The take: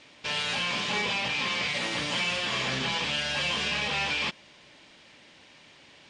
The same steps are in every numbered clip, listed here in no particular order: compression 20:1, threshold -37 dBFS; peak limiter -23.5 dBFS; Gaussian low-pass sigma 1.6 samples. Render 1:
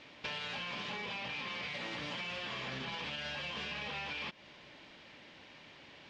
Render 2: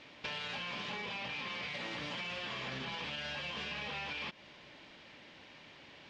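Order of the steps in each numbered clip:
Gaussian low-pass > peak limiter > compression; peak limiter > Gaussian low-pass > compression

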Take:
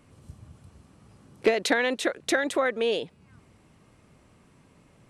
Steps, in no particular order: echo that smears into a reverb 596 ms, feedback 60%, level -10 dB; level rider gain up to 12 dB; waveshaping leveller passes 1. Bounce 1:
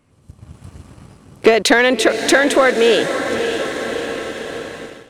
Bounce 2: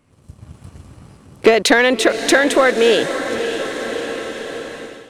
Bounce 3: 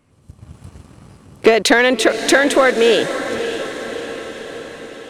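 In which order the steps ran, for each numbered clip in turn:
echo that smears into a reverb > level rider > waveshaping leveller; waveshaping leveller > echo that smears into a reverb > level rider; level rider > waveshaping leveller > echo that smears into a reverb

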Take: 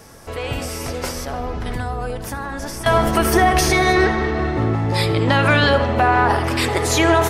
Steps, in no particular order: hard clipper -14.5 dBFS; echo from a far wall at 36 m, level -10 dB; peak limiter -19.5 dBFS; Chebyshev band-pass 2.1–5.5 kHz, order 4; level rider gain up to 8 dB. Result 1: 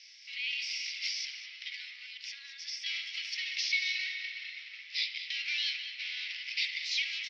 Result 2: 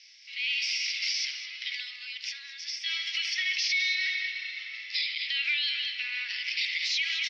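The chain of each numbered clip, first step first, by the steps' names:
level rider > hard clipper > echo from a far wall > peak limiter > Chebyshev band-pass; echo from a far wall > level rider > Chebyshev band-pass > peak limiter > hard clipper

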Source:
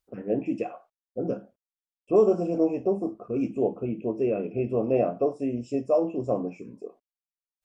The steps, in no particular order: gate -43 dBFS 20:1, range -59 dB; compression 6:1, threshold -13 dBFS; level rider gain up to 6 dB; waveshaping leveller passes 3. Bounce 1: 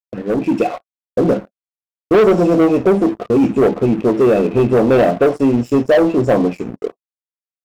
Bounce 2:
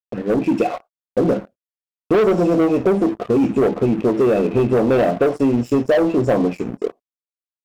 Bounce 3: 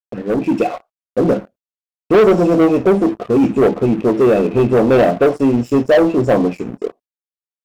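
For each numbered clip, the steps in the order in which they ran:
gate > waveshaping leveller > compression > level rider; waveshaping leveller > gate > level rider > compression; compression > waveshaping leveller > level rider > gate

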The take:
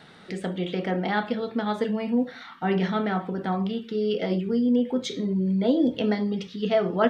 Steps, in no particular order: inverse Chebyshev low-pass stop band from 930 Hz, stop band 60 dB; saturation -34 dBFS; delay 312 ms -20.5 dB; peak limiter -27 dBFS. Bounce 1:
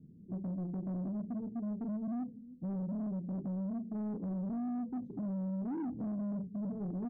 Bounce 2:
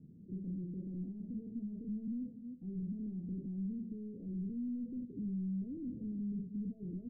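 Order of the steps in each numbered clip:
inverse Chebyshev low-pass > peak limiter > delay > saturation; delay > peak limiter > saturation > inverse Chebyshev low-pass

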